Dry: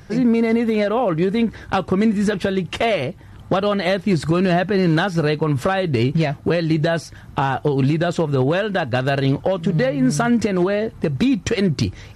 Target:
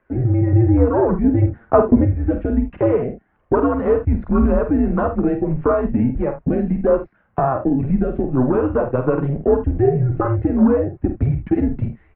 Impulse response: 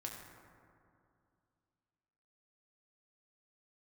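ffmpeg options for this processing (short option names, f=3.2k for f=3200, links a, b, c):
-filter_complex "[0:a]flanger=delay=1.5:depth=7.5:regen=36:speed=0.29:shape=triangular,afwtdn=0.0562,asplit=2[a][b];[b]aecho=0:1:48|76:0.422|0.211[c];[a][c]amix=inputs=2:normalize=0,highpass=f=200:t=q:w=0.5412,highpass=f=200:t=q:w=1.307,lowpass=f=2.4k:t=q:w=0.5176,lowpass=f=2.4k:t=q:w=0.7071,lowpass=f=2.4k:t=q:w=1.932,afreqshift=-130,asettb=1/sr,asplit=3[d][e][f];[d]atrim=end=1.244[g];[e]atrim=start=1.24:end=2.05,asetpts=PTS-STARTPTS,afade=t=in:d=0.004:c=qsin,afade=t=out:st=0.806:d=0.004:c=qsin,equalizer=f=440:w=0.44:g=6.5[h];[f]atrim=start=2.046[i];[g][h]acrossfade=d=0.004:c1=hsin:c2=qsin[j];[j][i]acrossfade=d=0.004:c1=qsin:c2=hsin,volume=6dB"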